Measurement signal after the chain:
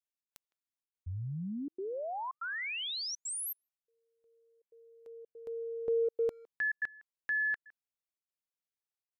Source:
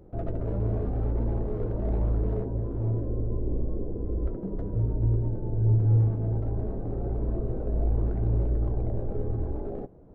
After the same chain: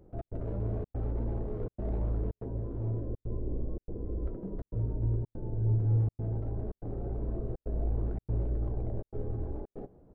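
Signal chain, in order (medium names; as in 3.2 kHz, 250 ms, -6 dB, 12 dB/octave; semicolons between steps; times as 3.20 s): speakerphone echo 160 ms, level -23 dB; trance gate "xx.xxxxx.xxxxx" 143 bpm -60 dB; trim -5.5 dB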